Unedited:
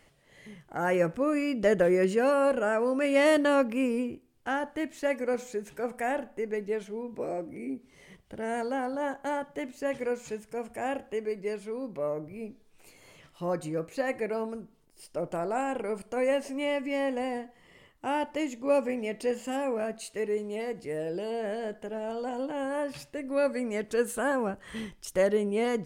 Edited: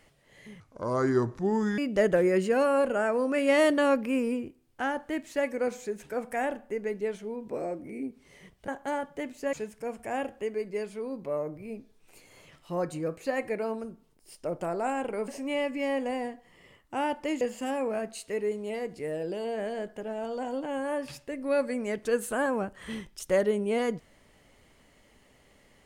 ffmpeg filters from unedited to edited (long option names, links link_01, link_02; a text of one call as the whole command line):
ffmpeg -i in.wav -filter_complex "[0:a]asplit=7[link_01][link_02][link_03][link_04][link_05][link_06][link_07];[link_01]atrim=end=0.604[link_08];[link_02]atrim=start=0.6:end=1.45,asetpts=PTS-STARTPTS,asetrate=31752,aresample=44100,atrim=end_sample=52062,asetpts=PTS-STARTPTS[link_09];[link_03]atrim=start=1.446:end=8.352[link_10];[link_04]atrim=start=9.068:end=9.922[link_11];[link_05]atrim=start=10.238:end=15.992[link_12];[link_06]atrim=start=16.388:end=18.522[link_13];[link_07]atrim=start=19.268[link_14];[link_08][link_09]acrossfade=duration=0.004:curve1=hsin:curve2=hsin[link_15];[link_15][link_10]acrossfade=duration=0.004:curve1=hsin:curve2=hsin[link_16];[link_16][link_11]acrossfade=duration=0.004:curve1=hsin:curve2=hsin[link_17];[link_17][link_12]acrossfade=duration=0.004:curve1=hsin:curve2=hsin[link_18];[link_18][link_13]acrossfade=duration=0.004:curve1=hsin:curve2=hsin[link_19];[link_19][link_14]acrossfade=duration=0.004:curve1=hsin:curve2=hsin" out.wav